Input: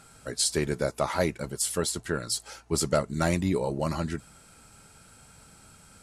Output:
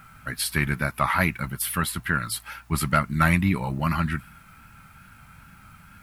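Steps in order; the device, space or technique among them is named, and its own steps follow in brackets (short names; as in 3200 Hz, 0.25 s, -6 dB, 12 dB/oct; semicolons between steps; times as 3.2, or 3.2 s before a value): EQ curve 180 Hz 0 dB, 270 Hz -5 dB, 450 Hz -18 dB, 1200 Hz +4 dB, 2400 Hz +5 dB, 7100 Hz -19 dB, 14000 Hz +11 dB; plain cassette with noise reduction switched in (mismatched tape noise reduction decoder only; wow and flutter; white noise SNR 38 dB); gain +6.5 dB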